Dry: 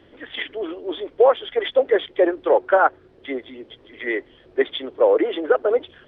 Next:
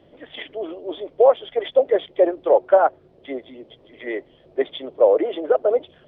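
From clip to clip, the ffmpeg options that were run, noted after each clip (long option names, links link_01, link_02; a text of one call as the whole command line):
ffmpeg -i in.wav -af "equalizer=frequency=160:width_type=o:width=0.67:gain=9,equalizer=frequency=630:width_type=o:width=0.67:gain=9,equalizer=frequency=1600:width_type=o:width=0.67:gain=-6,volume=-4.5dB" out.wav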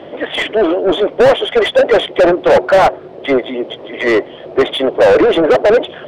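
ffmpeg -i in.wav -filter_complex "[0:a]asplit=2[link_01][link_02];[link_02]highpass=frequency=720:poles=1,volume=32dB,asoftclip=type=tanh:threshold=-3dB[link_03];[link_01][link_03]amix=inputs=2:normalize=0,lowpass=frequency=1400:poles=1,volume=-6dB,volume=2dB" out.wav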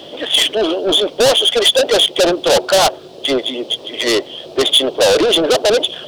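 ffmpeg -i in.wav -af "aexciter=amount=5.4:drive=9.6:freq=3100,volume=-4dB" out.wav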